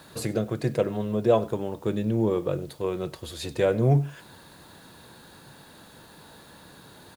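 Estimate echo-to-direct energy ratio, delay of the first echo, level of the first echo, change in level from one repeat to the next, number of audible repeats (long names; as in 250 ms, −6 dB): −21.5 dB, 96 ms, −21.5 dB, repeats not evenly spaced, 1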